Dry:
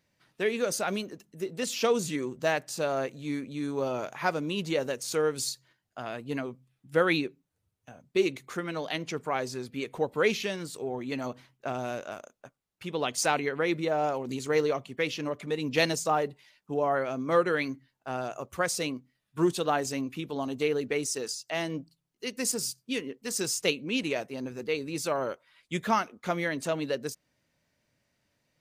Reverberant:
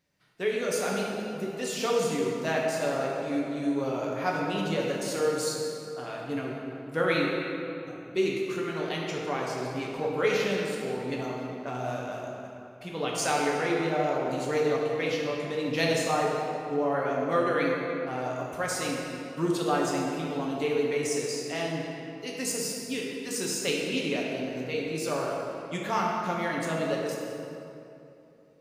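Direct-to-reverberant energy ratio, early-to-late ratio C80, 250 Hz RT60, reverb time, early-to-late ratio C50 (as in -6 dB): -3.0 dB, 1.0 dB, 3.2 s, 2.9 s, -0.5 dB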